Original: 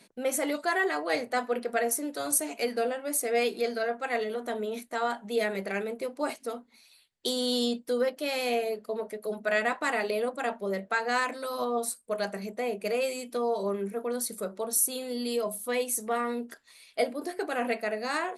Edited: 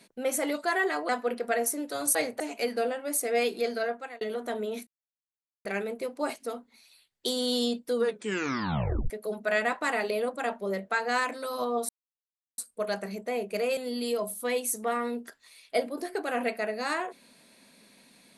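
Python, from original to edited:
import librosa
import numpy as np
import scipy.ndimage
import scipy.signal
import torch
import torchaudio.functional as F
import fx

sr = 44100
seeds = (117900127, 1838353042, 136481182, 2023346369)

y = fx.edit(x, sr, fx.move(start_s=1.09, length_s=0.25, to_s=2.4),
    fx.fade_out_span(start_s=3.86, length_s=0.35),
    fx.silence(start_s=4.87, length_s=0.78),
    fx.tape_stop(start_s=7.95, length_s=1.15),
    fx.insert_silence(at_s=11.89, length_s=0.69),
    fx.cut(start_s=13.08, length_s=1.93), tone=tone)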